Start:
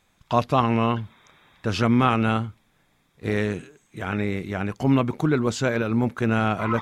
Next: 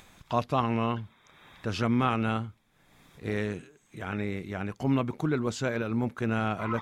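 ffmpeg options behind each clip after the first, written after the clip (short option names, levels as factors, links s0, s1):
-af "acompressor=mode=upward:threshold=0.0178:ratio=2.5,volume=0.473"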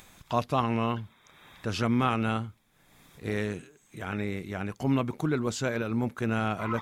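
-af "highshelf=f=7300:g=8"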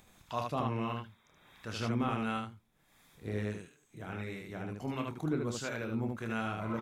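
-filter_complex "[0:a]acrossover=split=810[s0][s1];[s0]aeval=exprs='val(0)*(1-0.5/2+0.5/2*cos(2*PI*1.5*n/s))':c=same[s2];[s1]aeval=exprs='val(0)*(1-0.5/2-0.5/2*cos(2*PI*1.5*n/s))':c=same[s3];[s2][s3]amix=inputs=2:normalize=0,asplit=2[s4][s5];[s5]aecho=0:1:27|76:0.398|0.668[s6];[s4][s6]amix=inputs=2:normalize=0,volume=0.473"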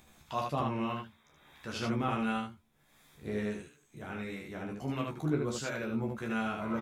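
-filter_complex "[0:a]asplit=2[s0][s1];[s1]adelay=14,volume=0.631[s2];[s0][s2]amix=inputs=2:normalize=0"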